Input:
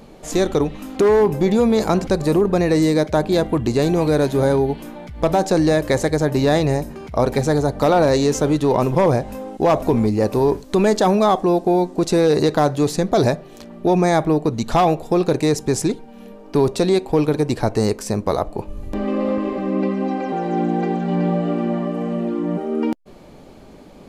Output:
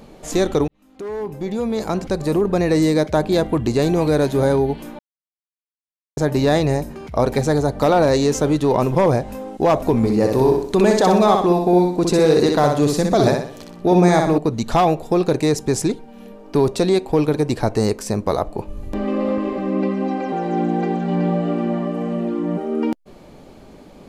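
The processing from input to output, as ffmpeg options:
ffmpeg -i in.wav -filter_complex "[0:a]asettb=1/sr,asplit=3[link_01][link_02][link_03];[link_01]atrim=end=9.974[link_04];[link_02]atrim=start=9.97:end=14.38,asetpts=PTS-STARTPTS,afade=type=in:duration=0.004:curve=qsin,afade=type=out:start_time=4.406:duration=0.004:curve=qsin,aecho=1:1:62|124|186|248|310:0.631|0.265|0.111|0.0467|0.0196,atrim=end_sample=194481[link_05];[link_03]atrim=start=14.376[link_06];[link_04][link_05]acrossfade=duration=0.004:curve1=hsin:curve2=qsin[link_07];[link_07][link_06]acrossfade=duration=0.004:curve1=qsin:curve2=hsin,asplit=4[link_08][link_09][link_10][link_11];[link_08]atrim=end=0.68,asetpts=PTS-STARTPTS,afade=type=out:start_time=0.676:duration=0.004:curve=hsin[link_12];[link_09]atrim=start=0.68:end=4.99,asetpts=PTS-STARTPTS,afade=type=in:duration=2.1,afade=type=out:start_time=4.306:duration=0.004:curve=hsin[link_13];[link_10]atrim=start=4.99:end=6.17,asetpts=PTS-STARTPTS,volume=0[link_14];[link_11]atrim=start=6.17,asetpts=PTS-STARTPTS,afade=type=in:duration=0.004:curve=hsin[link_15];[link_12][link_13][link_14][link_15]concat=n=4:v=0:a=1" out.wav

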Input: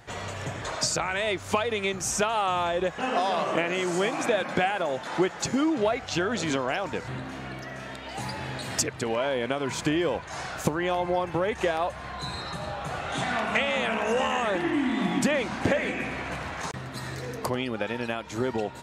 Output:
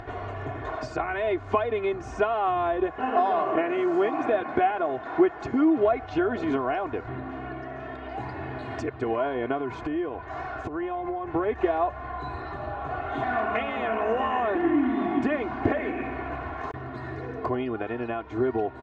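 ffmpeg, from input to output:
ffmpeg -i in.wav -filter_complex "[0:a]asettb=1/sr,asplit=3[link_01][link_02][link_03];[link_01]atrim=end=9.574[link_04];[link_02]atrim=start=9.57:end=11.29,asetpts=PTS-STARTPTS,afade=type=in:duration=0.004:curve=qsin,afade=type=out:start_time=1.716:duration=0.004:curve=qsin,acompressor=threshold=-28dB:ratio=6:attack=3.2:release=140:knee=1:detection=peak[link_05];[link_03]atrim=start=11.286[link_06];[link_04][link_05]acrossfade=duration=0.004:curve1=hsin:curve2=qsin[link_07];[link_07][link_06]acrossfade=duration=0.004:curve1=qsin:curve2=hsin,lowpass=1400,aecho=1:1:2.8:0.81,acompressor=mode=upward:threshold=-32dB:ratio=2.5" out.wav

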